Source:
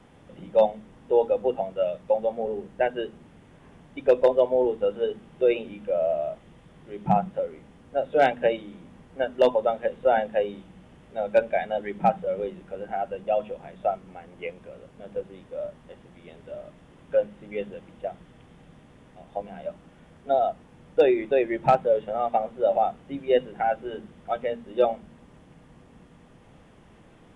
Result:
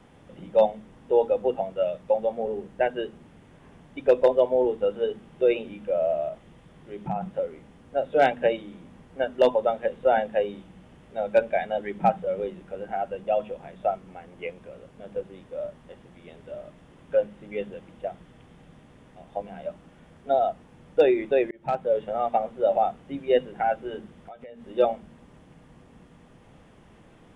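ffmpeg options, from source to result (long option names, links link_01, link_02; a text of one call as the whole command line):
ffmpeg -i in.wav -filter_complex "[0:a]asettb=1/sr,asplit=3[link_01][link_02][link_03];[link_01]atrim=end=6.284[link_04];[link_02]atrim=start=6.28:end=7.21,asetpts=PTS-STARTPTS,afade=type=in:duration=0.004:curve=qsin,afade=type=out:start_time=0.926:duration=0.004:curve=qsin,acompressor=threshold=-31dB:ratio=2:attack=3.2:release=140:knee=1:detection=peak[link_05];[link_03]atrim=start=7.206[link_06];[link_04][link_05]acrossfade=duration=0.004:curve1=hsin:curve2=qsin[link_07];[link_07][link_06]acrossfade=duration=0.004:curve1=qsin:curve2=hsin,asettb=1/sr,asplit=3[link_08][link_09][link_10];[link_08]atrim=end=24.164[link_11];[link_09]atrim=start=24.16:end=24.69,asetpts=PTS-STARTPTS,afade=type=in:duration=0.004:curve=qsin,afade=type=out:start_time=0.526:duration=0.004:curve=qsin,acompressor=threshold=-39dB:ratio=12:attack=3.2:release=140:knee=1:detection=peak[link_12];[link_10]atrim=start=24.686[link_13];[link_11][link_12]acrossfade=duration=0.004:curve1=hsin:curve2=qsin[link_14];[link_14][link_13]acrossfade=duration=0.004:curve1=qsin:curve2=hsin,asplit=2[link_15][link_16];[link_15]atrim=end=21.51,asetpts=PTS-STARTPTS,afade=type=out:start_time=21.506:duration=0.004:curve=hsin[link_17];[link_16]atrim=start=21.51,asetpts=PTS-STARTPTS,afade=type=in:duration=0.5[link_18];[link_17][link_18]concat=n=2:v=0:a=1" out.wav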